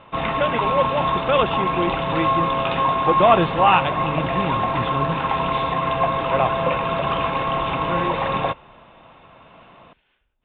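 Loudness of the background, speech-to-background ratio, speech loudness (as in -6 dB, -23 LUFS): -22.0 LUFS, -1.5 dB, -23.5 LUFS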